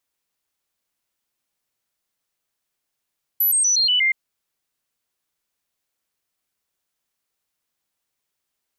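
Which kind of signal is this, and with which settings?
stepped sine 11900 Hz down, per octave 2, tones 6, 0.12 s, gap 0.00 s -15 dBFS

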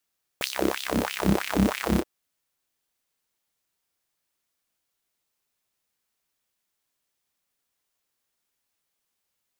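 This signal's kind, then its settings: synth patch with filter wobble C2, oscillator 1 triangle, oscillator 2 saw, interval -12 st, noise -29.5 dB, filter highpass, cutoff 330 Hz, Q 3, filter envelope 2 oct, filter decay 0.93 s, filter sustain 50%, attack 1.2 ms, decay 0.10 s, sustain -7 dB, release 0.05 s, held 1.58 s, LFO 3.1 Hz, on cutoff 1.9 oct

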